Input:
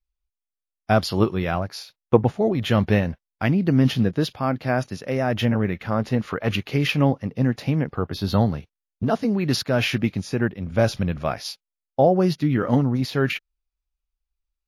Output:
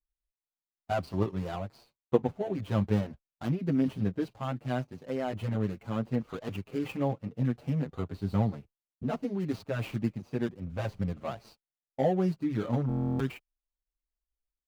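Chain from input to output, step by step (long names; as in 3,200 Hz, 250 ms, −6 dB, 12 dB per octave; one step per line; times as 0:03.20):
running median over 25 samples
buffer that repeats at 0:12.87, samples 1,024, times 13
barber-pole flanger 7.1 ms +0.72 Hz
level −6.5 dB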